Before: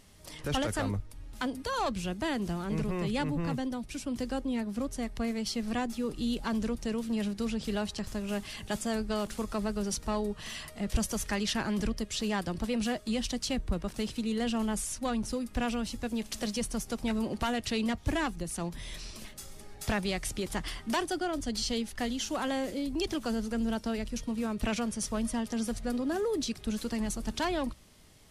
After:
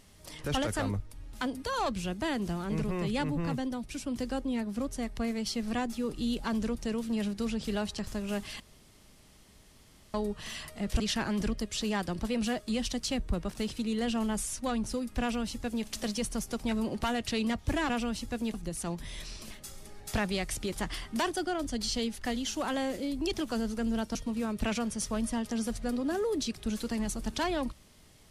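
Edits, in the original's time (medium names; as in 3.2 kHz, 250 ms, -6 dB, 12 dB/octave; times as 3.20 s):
8.60–10.14 s: room tone
11.00–11.39 s: delete
15.60–16.25 s: copy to 18.28 s
23.89–24.16 s: delete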